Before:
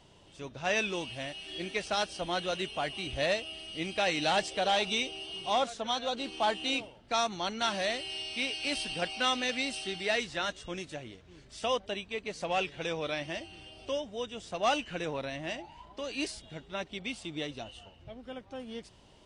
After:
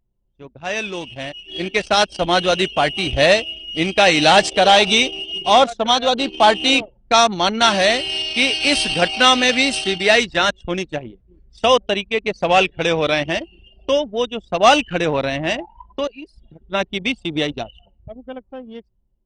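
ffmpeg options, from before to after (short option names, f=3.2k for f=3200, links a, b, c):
-filter_complex "[0:a]asettb=1/sr,asplit=3[a][b][c];[a]atrim=end=16.074[d];[b]atrim=start=16.07:end=16.62,asetpts=PTS-STARTPTS,afade=t=in:d=0.004:c=qsin,afade=t=out:st=0.546:d=0.004:c=qsin,acompressor=threshold=-47dB:ratio=3:attack=3.2:release=140:knee=1:detection=peak[e];[c]atrim=start=16.616[f];[d][e]acrossfade=d=0.004:c1=hsin:c2=qsin[g];[g][f]acrossfade=d=0.004:c1=qsin:c2=hsin,anlmdn=0.398,dynaudnorm=f=270:g=11:m=13dB,volume=3.5dB"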